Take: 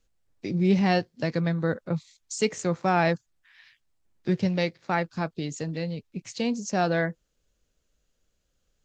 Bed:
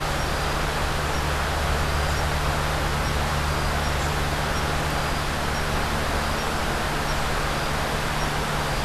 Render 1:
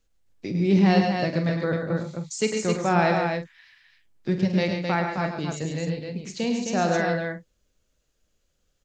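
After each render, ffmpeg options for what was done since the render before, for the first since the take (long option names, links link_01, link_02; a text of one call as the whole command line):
ffmpeg -i in.wav -filter_complex "[0:a]asplit=2[link_01][link_02];[link_02]adelay=46,volume=-10.5dB[link_03];[link_01][link_03]amix=inputs=2:normalize=0,aecho=1:1:105|137|262.4:0.447|0.355|0.562" out.wav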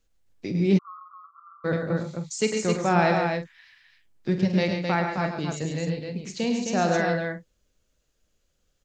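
ffmpeg -i in.wav -filter_complex "[0:a]asplit=3[link_01][link_02][link_03];[link_01]afade=type=out:start_time=0.77:duration=0.02[link_04];[link_02]asuperpass=centerf=1200:order=20:qfactor=3.5,afade=type=in:start_time=0.77:duration=0.02,afade=type=out:start_time=1.64:duration=0.02[link_05];[link_03]afade=type=in:start_time=1.64:duration=0.02[link_06];[link_04][link_05][link_06]amix=inputs=3:normalize=0" out.wav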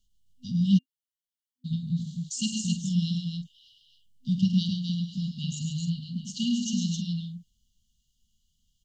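ffmpeg -i in.wav -af "afftfilt=real='re*(1-between(b*sr/4096,250,2800))':imag='im*(1-between(b*sr/4096,250,2800))':win_size=4096:overlap=0.75,equalizer=frequency=2900:width_type=o:width=0.35:gain=6" out.wav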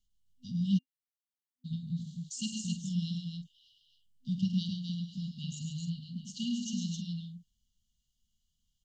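ffmpeg -i in.wav -af "volume=-7dB" out.wav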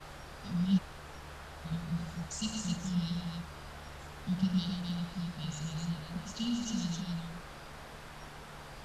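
ffmpeg -i in.wav -i bed.wav -filter_complex "[1:a]volume=-23dB[link_01];[0:a][link_01]amix=inputs=2:normalize=0" out.wav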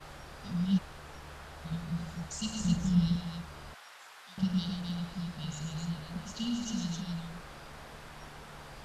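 ffmpeg -i in.wav -filter_complex "[0:a]asettb=1/sr,asplit=3[link_01][link_02][link_03];[link_01]atrim=end=2.604[link_04];[link_02]atrim=start=2.6:end=3.16,asetpts=PTS-STARTPTS,afade=type=in:duration=0.004:curve=qsin,afade=type=out:start_time=0.556:duration=0.004:curve=qsin,lowshelf=frequency=250:gain=10[link_05];[link_03]atrim=start=3.156[link_06];[link_04][link_05]acrossfade=duration=0.004:curve1=hsin:curve2=qsin[link_07];[link_07][link_06]acrossfade=duration=0.004:curve1=qsin:curve2=hsin,asettb=1/sr,asplit=3[link_08][link_09][link_10];[link_08]atrim=end=3.744[link_11];[link_09]atrim=start=3.74:end=4.38,asetpts=PTS-STARTPTS,afade=type=in:duration=0.004:curve=qsin,afade=type=out:start_time=0.636:duration=0.004:curve=qsin,highpass=970[link_12];[link_10]atrim=start=4.376[link_13];[link_11][link_12]acrossfade=duration=0.004:curve1=hsin:curve2=qsin[link_14];[link_14][link_13]acrossfade=duration=0.004:curve1=qsin:curve2=hsin" out.wav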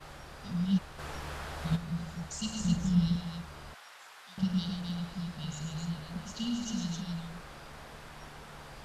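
ffmpeg -i in.wav -filter_complex "[0:a]asplit=3[link_01][link_02][link_03];[link_01]afade=type=out:start_time=0.98:duration=0.02[link_04];[link_02]acontrast=80,afade=type=in:start_time=0.98:duration=0.02,afade=type=out:start_time=1.75:duration=0.02[link_05];[link_03]afade=type=in:start_time=1.75:duration=0.02[link_06];[link_04][link_05][link_06]amix=inputs=3:normalize=0" out.wav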